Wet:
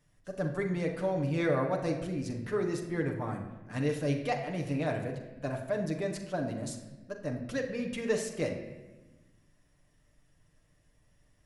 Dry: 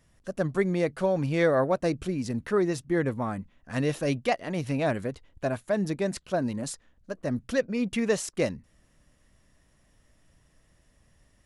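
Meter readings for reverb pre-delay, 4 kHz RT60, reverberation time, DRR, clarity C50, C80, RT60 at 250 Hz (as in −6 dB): 7 ms, 0.85 s, 1.2 s, 1.0 dB, 7.0 dB, 9.0 dB, 1.7 s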